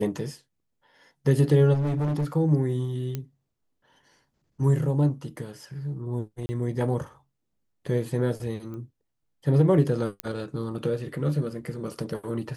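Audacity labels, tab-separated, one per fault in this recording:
1.730000	2.250000	clipping −23 dBFS
3.150000	3.150000	click −17 dBFS
6.460000	6.490000	drop-out 30 ms
8.740000	8.740000	click −29 dBFS
10.200000	10.200000	click −12 dBFS

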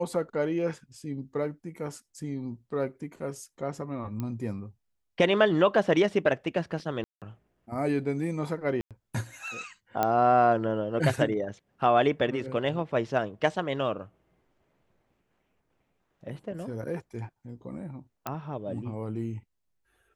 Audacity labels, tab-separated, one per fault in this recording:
4.200000	4.200000	click −21 dBFS
7.040000	7.220000	drop-out 177 ms
8.810000	8.910000	drop-out 97 ms
10.030000	10.030000	click −12 dBFS
18.270000	18.270000	click −17 dBFS

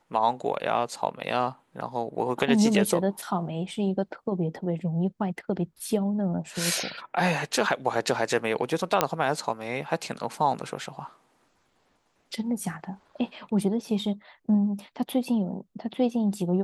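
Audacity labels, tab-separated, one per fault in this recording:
9.010000	9.010000	click −5 dBFS

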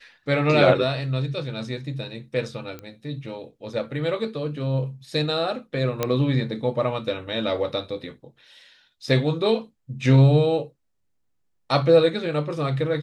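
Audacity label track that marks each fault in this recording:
2.790000	2.790000	click −22 dBFS
6.030000	6.030000	click −8 dBFS

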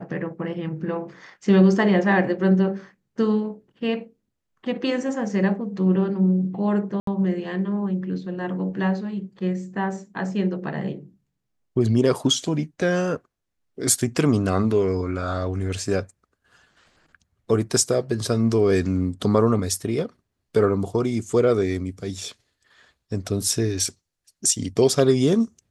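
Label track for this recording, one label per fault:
7.000000	7.070000	drop-out 73 ms

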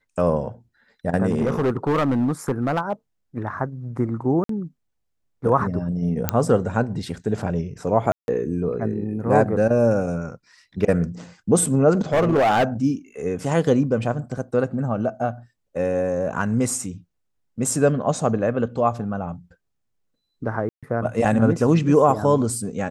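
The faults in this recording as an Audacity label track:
1.290000	2.930000	clipping −16 dBFS
4.440000	4.490000	drop-out 53 ms
6.290000	6.290000	click −3 dBFS
8.120000	8.280000	drop-out 161 ms
11.920000	12.640000	clipping −14.5 dBFS
20.690000	20.830000	drop-out 136 ms

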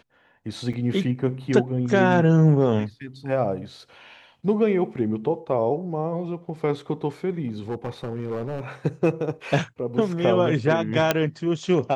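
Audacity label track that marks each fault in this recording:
0.730000	0.740000	drop-out 5.6 ms
7.470000	8.610000	clipping −24 dBFS
11.110000	11.110000	click −4 dBFS

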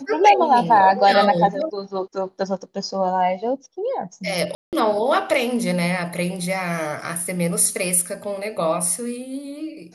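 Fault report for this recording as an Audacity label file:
4.550000	4.730000	drop-out 178 ms

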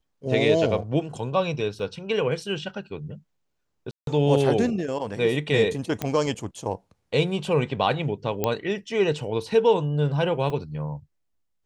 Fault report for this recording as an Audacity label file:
1.790000	1.790000	drop-out 3.4 ms
3.910000	4.070000	drop-out 162 ms
6.020000	6.020000	click −12 dBFS
8.440000	8.440000	click −9 dBFS
10.500000	10.500000	drop-out 2.5 ms

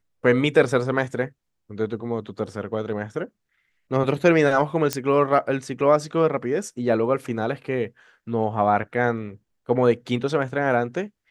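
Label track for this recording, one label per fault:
4.930000	4.930000	click −7 dBFS

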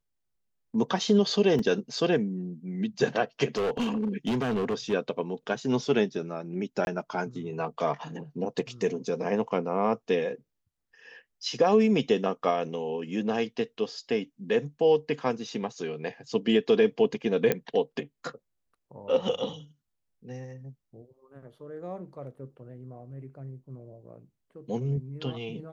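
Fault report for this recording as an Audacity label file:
1.590000	1.590000	drop-out 3.2 ms
3.570000	4.940000	clipping −24 dBFS
6.850000	6.870000	drop-out 21 ms
17.520000	17.520000	click −11 dBFS

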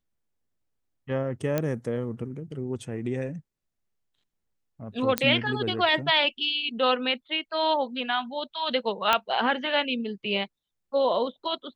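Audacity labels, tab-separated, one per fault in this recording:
1.580000	1.580000	click −12 dBFS
5.180000	5.180000	click −6 dBFS
9.130000	9.130000	click −7 dBFS

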